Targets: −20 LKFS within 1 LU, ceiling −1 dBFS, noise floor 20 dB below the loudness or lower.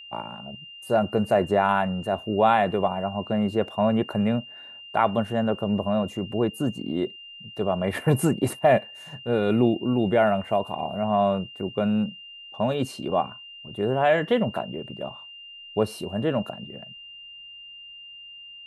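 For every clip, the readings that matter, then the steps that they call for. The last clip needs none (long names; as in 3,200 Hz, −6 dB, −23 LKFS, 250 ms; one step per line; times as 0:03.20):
interfering tone 2,800 Hz; level of the tone −41 dBFS; integrated loudness −25.0 LKFS; sample peak −7.5 dBFS; target loudness −20.0 LKFS
→ notch filter 2,800 Hz, Q 30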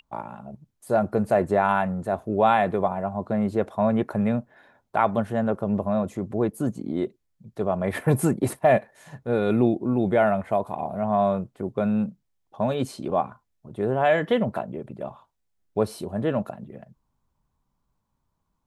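interfering tone none found; integrated loudness −25.0 LKFS; sample peak −7.5 dBFS; target loudness −20.0 LKFS
→ level +5 dB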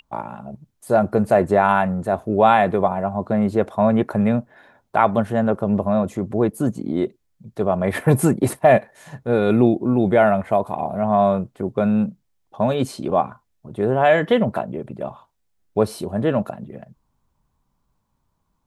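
integrated loudness −20.0 LKFS; sample peak −2.5 dBFS; background noise floor −70 dBFS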